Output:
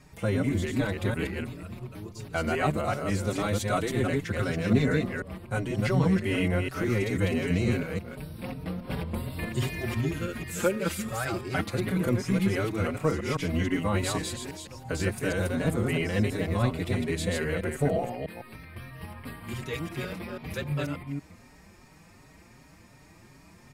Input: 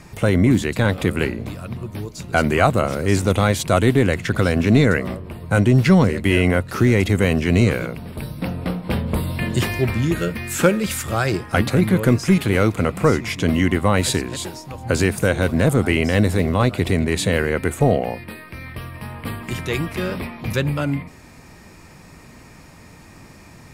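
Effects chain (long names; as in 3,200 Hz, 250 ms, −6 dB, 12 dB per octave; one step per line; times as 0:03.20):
delay that plays each chunk backwards 163 ms, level −2.5 dB
barber-pole flanger 5 ms +2.7 Hz
level −8.5 dB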